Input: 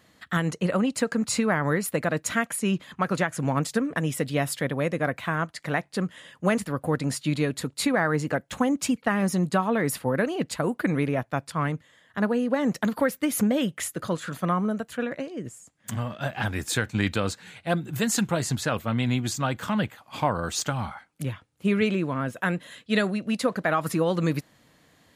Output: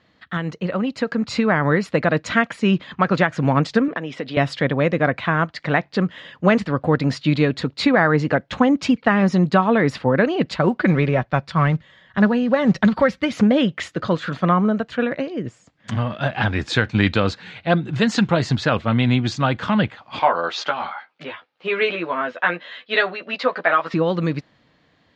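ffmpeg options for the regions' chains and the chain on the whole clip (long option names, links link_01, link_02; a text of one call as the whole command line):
ffmpeg -i in.wav -filter_complex "[0:a]asettb=1/sr,asplit=3[link_01][link_02][link_03];[link_01]atrim=end=3.884[link_04];[link_02]atrim=start=3.88:end=4.37,asetpts=PTS-STARTPTS,afade=type=in:duration=0.004:curve=qsin,afade=type=out:start_time=0.486:duration=0.004:curve=qsin,acompressor=threshold=-28dB:ratio=4:attack=3.2:release=140:knee=1:detection=peak,highpass=250,lowpass=5100[link_05];[link_03]atrim=start=4.366[link_06];[link_04][link_05]acrossfade=duration=0.004:curve1=hsin:curve2=qsin[link_07];[link_07][link_06]acrossfade=duration=0.004:curve1=qsin:curve2=hsin,asettb=1/sr,asplit=3[link_08][link_09][link_10];[link_08]atrim=end=10.454[link_11];[link_09]atrim=start=10.45:end=13.33,asetpts=PTS-STARTPTS,afade=type=in:duration=0.004:curve=qsin,afade=type=out:start_time=2.876:duration=0.004:curve=qsin,asubboost=boost=4.5:cutoff=150,aecho=1:1:5.3:0.39,atrim=end_sample=127008,acrusher=bits=9:mode=log:mix=0:aa=0.000001[link_12];[link_10]atrim=start=13.326[link_13];[link_11][link_12]acrossfade=duration=0.004:curve1=hsin:curve2=qsin[link_14];[link_14][link_13]acrossfade=duration=0.004:curve1=qsin:curve2=hsin,asettb=1/sr,asplit=3[link_15][link_16][link_17];[link_15]atrim=end=20.194[link_18];[link_16]atrim=start=20.19:end=23.94,asetpts=PTS-STARTPTS,afade=type=in:duration=0.004:curve=qsin,afade=type=out:start_time=3.746:duration=0.004:curve=qsin,highpass=540,lowpass=4300,asplit=2[link_19][link_20];[link_20]adelay=12,volume=-2dB[link_21];[link_19][link_21]amix=inputs=2:normalize=0,atrim=end_sample=165375[link_22];[link_17]atrim=start=23.936[link_23];[link_18][link_22]acrossfade=duration=0.004:curve1=hsin:curve2=qsin[link_24];[link_24][link_23]acrossfade=duration=0.004:curve1=qsin:curve2=hsin,lowpass=frequency=4700:width=0.5412,lowpass=frequency=4700:width=1.3066,dynaudnorm=framelen=200:gausssize=13:maxgain=8.5dB" out.wav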